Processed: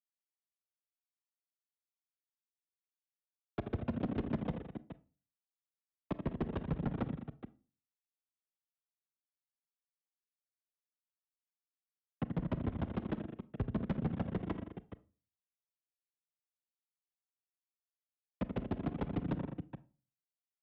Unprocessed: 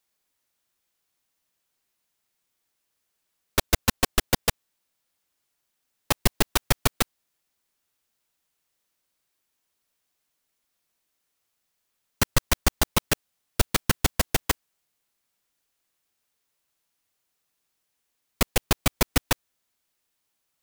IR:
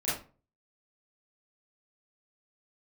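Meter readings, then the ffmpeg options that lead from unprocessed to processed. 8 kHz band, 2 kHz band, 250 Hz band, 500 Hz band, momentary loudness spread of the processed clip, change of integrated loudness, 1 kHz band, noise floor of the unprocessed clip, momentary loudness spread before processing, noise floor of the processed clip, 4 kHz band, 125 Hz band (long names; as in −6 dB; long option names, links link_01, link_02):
below −40 dB, −23.0 dB, −4.5 dB, −11.0 dB, 13 LU, −13.5 dB, −16.0 dB, −78 dBFS, 5 LU, below −85 dBFS, −31.0 dB, −7.5 dB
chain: -filter_complex "[0:a]aresample=8000,volume=12.5dB,asoftclip=hard,volume=-12.5dB,aresample=44100,agate=range=-33dB:threshold=-29dB:ratio=3:detection=peak,bandpass=frequency=180:width_type=q:width=1.4:csg=0,aecho=1:1:82|166|205|421:0.266|0.126|0.133|0.188,afreqshift=25,aphaser=in_gain=1:out_gain=1:delay=3.1:decay=0.3:speed=0.72:type=sinusoidal,asoftclip=type=tanh:threshold=-31.5dB,asplit=2[link_01][link_02];[1:a]atrim=start_sample=2205[link_03];[link_02][link_03]afir=irnorm=-1:irlink=0,volume=-23dB[link_04];[link_01][link_04]amix=inputs=2:normalize=0,volume=2.5dB"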